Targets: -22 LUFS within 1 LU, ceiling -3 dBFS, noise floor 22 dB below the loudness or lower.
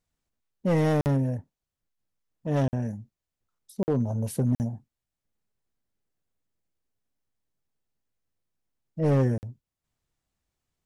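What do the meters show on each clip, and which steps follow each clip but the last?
clipped 0.8%; flat tops at -17.5 dBFS; dropouts 5; longest dropout 49 ms; loudness -27.0 LUFS; peak -17.5 dBFS; loudness target -22.0 LUFS
-> clip repair -17.5 dBFS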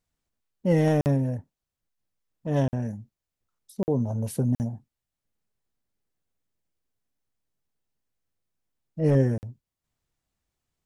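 clipped 0.0%; dropouts 5; longest dropout 49 ms
-> interpolate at 1.01/2.68/3.83/4.55/9.38, 49 ms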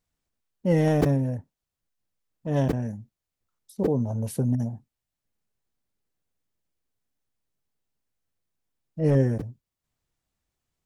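dropouts 0; loudness -25.5 LUFS; peak -7.5 dBFS; loudness target -22.0 LUFS
-> gain +3.5 dB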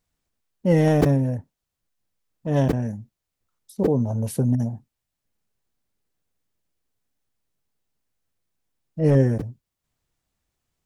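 loudness -22.0 LUFS; peak -4.0 dBFS; noise floor -83 dBFS

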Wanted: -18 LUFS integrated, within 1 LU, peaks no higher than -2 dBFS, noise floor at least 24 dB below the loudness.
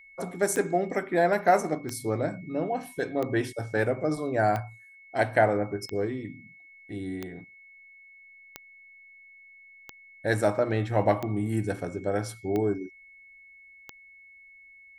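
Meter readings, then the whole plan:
clicks 11; steady tone 2200 Hz; tone level -50 dBFS; loudness -28.0 LUFS; peak -9.0 dBFS; loudness target -18.0 LUFS
-> de-click; notch 2200 Hz, Q 30; gain +10 dB; limiter -2 dBFS

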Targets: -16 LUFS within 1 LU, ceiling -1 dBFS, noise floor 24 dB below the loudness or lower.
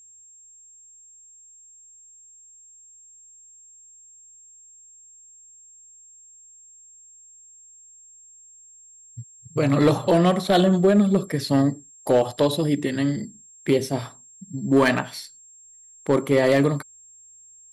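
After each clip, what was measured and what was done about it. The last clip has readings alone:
clipped 0.3%; flat tops at -10.5 dBFS; steady tone 7500 Hz; tone level -47 dBFS; loudness -21.5 LUFS; peak -10.5 dBFS; loudness target -16.0 LUFS
-> clip repair -10.5 dBFS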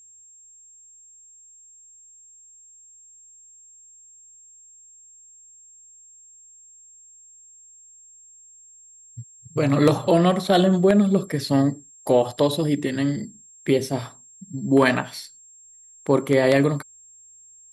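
clipped 0.0%; steady tone 7500 Hz; tone level -47 dBFS
-> notch 7500 Hz, Q 30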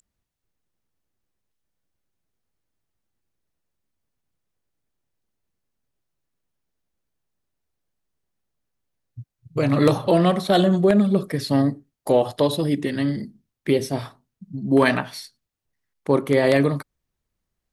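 steady tone none; loudness -20.5 LUFS; peak -1.5 dBFS; loudness target -16.0 LUFS
-> gain +4.5 dB; limiter -1 dBFS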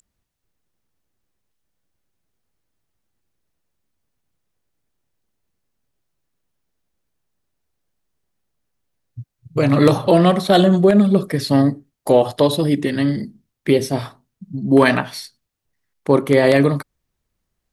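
loudness -16.5 LUFS; peak -1.0 dBFS; noise floor -78 dBFS

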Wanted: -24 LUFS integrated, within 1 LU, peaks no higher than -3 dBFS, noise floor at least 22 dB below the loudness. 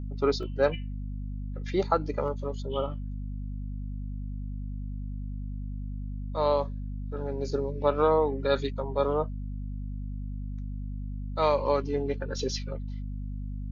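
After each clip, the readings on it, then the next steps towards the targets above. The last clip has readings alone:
dropouts 2; longest dropout 1.3 ms; hum 50 Hz; harmonics up to 250 Hz; hum level -32 dBFS; loudness -31.0 LUFS; peak -10.0 dBFS; loudness target -24.0 LUFS
-> interpolate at 0.43/2.28, 1.3 ms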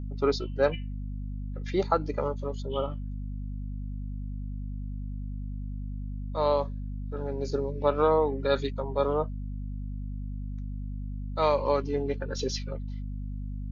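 dropouts 0; hum 50 Hz; harmonics up to 250 Hz; hum level -32 dBFS
-> de-hum 50 Hz, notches 5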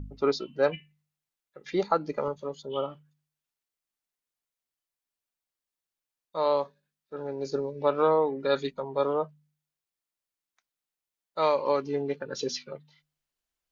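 hum none; loudness -29.0 LUFS; peak -11.0 dBFS; loudness target -24.0 LUFS
-> gain +5 dB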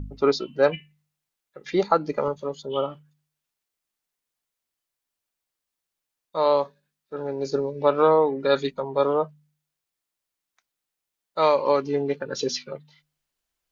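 loudness -24.0 LUFS; peak -6.0 dBFS; noise floor -85 dBFS

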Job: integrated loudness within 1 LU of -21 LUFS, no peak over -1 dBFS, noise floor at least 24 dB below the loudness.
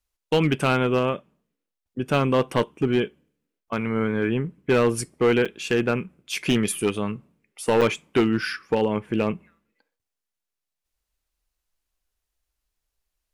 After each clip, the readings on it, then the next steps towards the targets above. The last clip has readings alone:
clipped 0.7%; flat tops at -13.5 dBFS; dropouts 2; longest dropout 6.1 ms; loudness -24.0 LUFS; peak -13.5 dBFS; loudness target -21.0 LUFS
-> clip repair -13.5 dBFS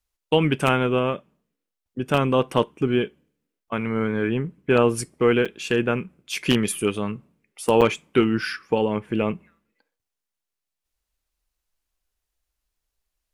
clipped 0.0%; dropouts 2; longest dropout 6.1 ms
-> interpolate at 5.45/7.81, 6.1 ms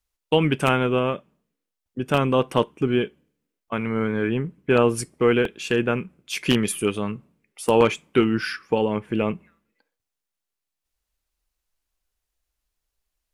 dropouts 0; loudness -23.0 LUFS; peak -4.5 dBFS; loudness target -21.0 LUFS
-> gain +2 dB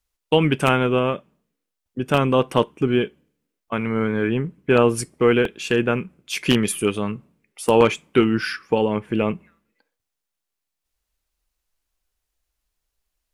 loudness -21.0 LUFS; peak -2.5 dBFS; noise floor -82 dBFS

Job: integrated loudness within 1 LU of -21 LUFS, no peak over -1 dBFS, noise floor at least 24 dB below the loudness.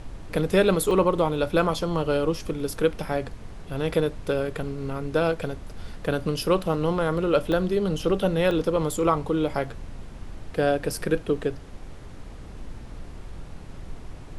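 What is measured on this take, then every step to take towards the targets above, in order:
dropouts 4; longest dropout 1.1 ms; noise floor -41 dBFS; noise floor target -49 dBFS; loudness -25.0 LUFS; peak -8.0 dBFS; loudness target -21.0 LUFS
-> interpolate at 0.91/2.67/7.52/8.51, 1.1 ms; noise print and reduce 8 dB; gain +4 dB

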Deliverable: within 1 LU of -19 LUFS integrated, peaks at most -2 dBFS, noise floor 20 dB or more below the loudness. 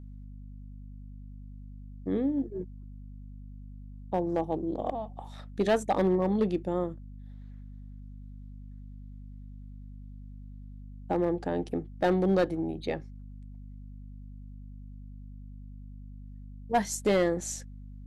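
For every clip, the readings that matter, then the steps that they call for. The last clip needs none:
clipped 0.4%; flat tops at -18.5 dBFS; hum 50 Hz; harmonics up to 250 Hz; hum level -42 dBFS; loudness -30.0 LUFS; peak -18.5 dBFS; loudness target -19.0 LUFS
-> clip repair -18.5 dBFS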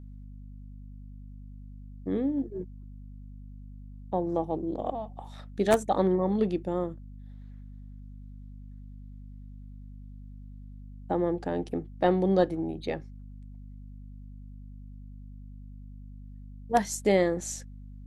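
clipped 0.0%; hum 50 Hz; harmonics up to 250 Hz; hum level -42 dBFS
-> de-hum 50 Hz, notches 5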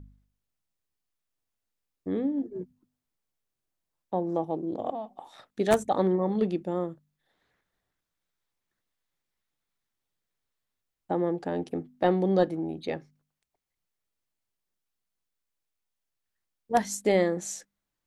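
hum none; loudness -29.0 LUFS; peak -9.5 dBFS; loudness target -19.0 LUFS
-> gain +10 dB; limiter -2 dBFS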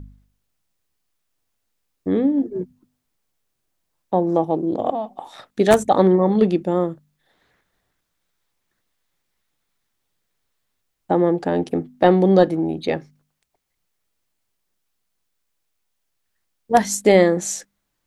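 loudness -19.0 LUFS; peak -2.0 dBFS; noise floor -75 dBFS

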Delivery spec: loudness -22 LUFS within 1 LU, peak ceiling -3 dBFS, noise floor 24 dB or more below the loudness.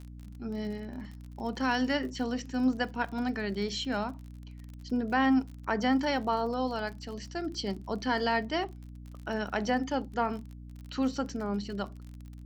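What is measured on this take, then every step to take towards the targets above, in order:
ticks 39/s; hum 60 Hz; harmonics up to 300 Hz; hum level -43 dBFS; loudness -31.5 LUFS; peak -14.5 dBFS; loudness target -22.0 LUFS
-> de-click; notches 60/120/180/240/300 Hz; gain +9.5 dB

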